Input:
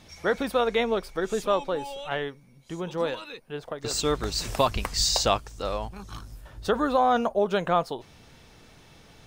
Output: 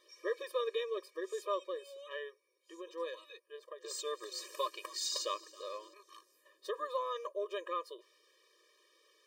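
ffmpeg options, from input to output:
-filter_complex "[0:a]asubboost=boost=10.5:cutoff=110,asettb=1/sr,asplit=3[a][b][c];[a]atrim=end=3.404[d];[b]atrim=start=3.4:end=5.94,asetpts=PTS-STARTPTS,afade=t=in:d=0.004:c=qsin,afade=t=out:st=2.536:d=0.004:c=qsin,asplit=5[e][f][g][h][i];[f]adelay=272,afreqshift=66,volume=-19.5dB[j];[g]adelay=544,afreqshift=132,volume=-24.9dB[k];[h]adelay=816,afreqshift=198,volume=-30.2dB[l];[i]adelay=1088,afreqshift=264,volume=-35.6dB[m];[e][j][k][l][m]amix=inputs=5:normalize=0,atrim=end_sample=112014[n];[c]atrim=start=5.936[o];[d][n]acrossfade=d=0.004:c1=hsin:c2=qsin[p];[p][o]acrossfade=d=0.004:c1=qsin:c2=hsin,afftfilt=real='re*eq(mod(floor(b*sr/1024/320),2),1)':imag='im*eq(mod(floor(b*sr/1024/320),2),1)':win_size=1024:overlap=0.75,volume=-9dB"

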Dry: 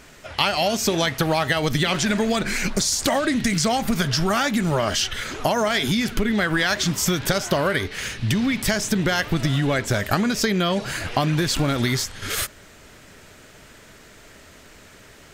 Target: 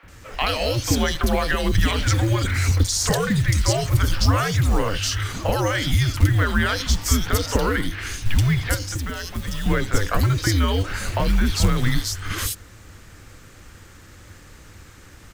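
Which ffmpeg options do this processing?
-filter_complex "[0:a]lowshelf=f=180:g=8.5,acrossover=split=690|3200[a][b][c];[a]adelay=30[d];[c]adelay=80[e];[d][b][e]amix=inputs=3:normalize=0,acrusher=bits=7:mode=log:mix=0:aa=0.000001,asettb=1/sr,asplit=3[f][g][h];[f]atrim=end=8.744[i];[g]atrim=start=8.74:end=9.66,asetpts=PTS-STARTPTS,afade=t=in:d=0.004:c=qsin,afade=t=out:st=0.916:d=0.004:c=qsin,acrossover=split=290|4500[j][k][l];[j]acompressor=threshold=-29dB:ratio=4[m];[k]acompressor=threshold=-32dB:ratio=4[n];[l]acompressor=threshold=-33dB:ratio=4[o];[m][n][o]amix=inputs=3:normalize=0[p];[h]atrim=start=9.656[q];[i][p]acrossfade=d=0.004:c1=hsin:c2=qsin[r];[r][q]acrossfade=d=0.004:c1=qsin:c2=hsin,afreqshift=-110"

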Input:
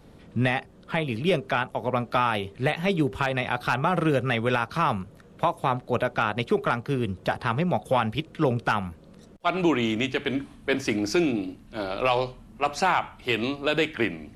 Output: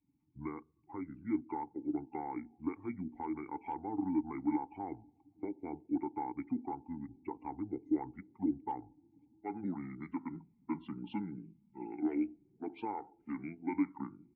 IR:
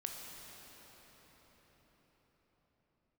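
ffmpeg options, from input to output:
-filter_complex "[0:a]asplit=2[a][b];[1:a]atrim=start_sample=2205[c];[b][c]afir=irnorm=-1:irlink=0,volume=-18dB[d];[a][d]amix=inputs=2:normalize=0,asetrate=26222,aresample=44100,atempo=1.68179,afftdn=nr=19:nf=-38,asplit=3[e][f][g];[e]bandpass=f=300:t=q:w=8,volume=0dB[h];[f]bandpass=f=870:t=q:w=8,volume=-6dB[i];[g]bandpass=f=2.24k:t=q:w=8,volume=-9dB[j];[h][i][j]amix=inputs=3:normalize=0,volume=-3.5dB"

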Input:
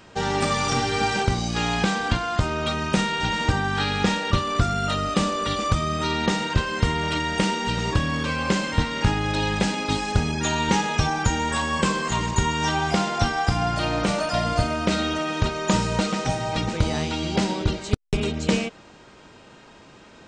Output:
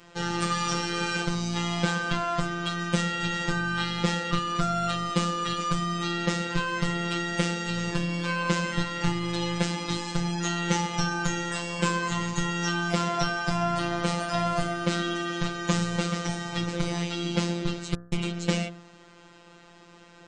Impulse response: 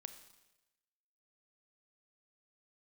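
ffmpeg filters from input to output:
-af "bandreject=f=63.88:t=h:w=4,bandreject=f=127.76:t=h:w=4,bandreject=f=191.64:t=h:w=4,bandreject=f=255.52:t=h:w=4,bandreject=f=319.4:t=h:w=4,bandreject=f=383.28:t=h:w=4,bandreject=f=447.16:t=h:w=4,bandreject=f=511.04:t=h:w=4,bandreject=f=574.92:t=h:w=4,bandreject=f=638.8:t=h:w=4,bandreject=f=702.68:t=h:w=4,bandreject=f=766.56:t=h:w=4,bandreject=f=830.44:t=h:w=4,bandreject=f=894.32:t=h:w=4,bandreject=f=958.2:t=h:w=4,bandreject=f=1.02208k:t=h:w=4,bandreject=f=1.08596k:t=h:w=4,bandreject=f=1.14984k:t=h:w=4,bandreject=f=1.21372k:t=h:w=4,bandreject=f=1.2776k:t=h:w=4,bandreject=f=1.34148k:t=h:w=4,bandreject=f=1.40536k:t=h:w=4,bandreject=f=1.46924k:t=h:w=4,bandreject=f=1.53312k:t=h:w=4,bandreject=f=1.597k:t=h:w=4,bandreject=f=1.66088k:t=h:w=4,bandreject=f=1.72476k:t=h:w=4,bandreject=f=1.78864k:t=h:w=4,bandreject=f=1.85252k:t=h:w=4,afftfilt=real='hypot(re,im)*cos(PI*b)':imag='0':win_size=1024:overlap=0.75"

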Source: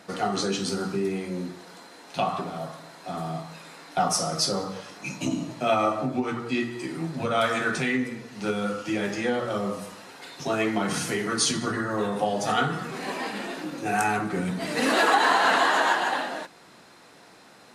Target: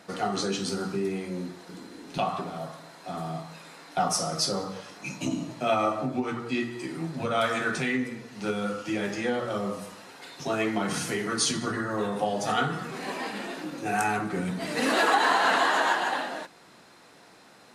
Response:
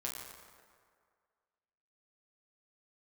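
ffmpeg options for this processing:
-filter_complex "[0:a]asettb=1/sr,asplit=3[a][b][c];[a]atrim=end=1.694[d];[b]atrim=start=1.69:end=2.18,asetpts=PTS-STARTPTS,afade=t=in:d=0.004:c=qsin,afade=t=out:st=0.486:d=0.004:c=qsin,lowshelf=f=450:t=q:w=1.5:g=10.5[e];[c]atrim=start=2.176[f];[d][e]acrossfade=d=0.004:c1=hsin:c2=qsin[g];[g][f]acrossfade=d=0.004:c1=qsin:c2=hsin,volume=-2dB"

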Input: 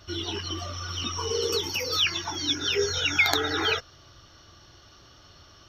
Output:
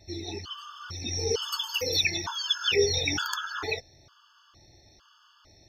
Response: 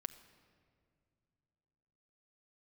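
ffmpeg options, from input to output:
-filter_complex "[0:a]asettb=1/sr,asplit=3[a][b][c];[a]atrim=end=1.084[d];[b]atrim=start=1.08:end=3.25,asetpts=PTS-STARTPTS,afade=t=in:d=0.004:c=qsin,afade=t=out:st=2.166:d=0.004:c=qsin,acontrast=36[e];[c]atrim=start=3.246[f];[d][e]acrossfade=d=0.004:c1=hsin:c2=qsin[g];[g][f]acrossfade=d=0.004:c1=qsin:c2=hsin,afftfilt=real='re*gt(sin(2*PI*1.1*pts/sr)*(1-2*mod(floor(b*sr/1024/880),2)),0)':imag='im*gt(sin(2*PI*1.1*pts/sr)*(1-2*mod(floor(b*sr/1024/880),2)),0)':win_size=1024:overlap=0.75,volume=-2.5dB"

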